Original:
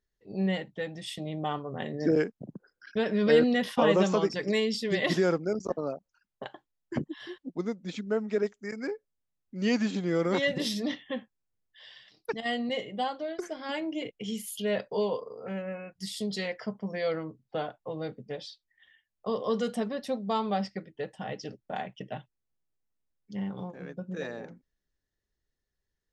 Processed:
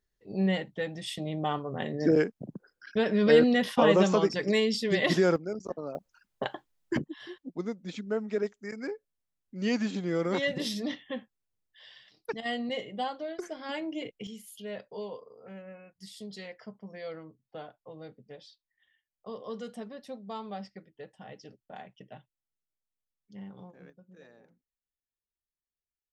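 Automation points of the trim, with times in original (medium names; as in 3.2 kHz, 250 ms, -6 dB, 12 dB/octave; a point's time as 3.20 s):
+1.5 dB
from 5.36 s -5 dB
from 5.95 s +7.5 dB
from 6.97 s -2 dB
from 14.27 s -10 dB
from 23.90 s -18.5 dB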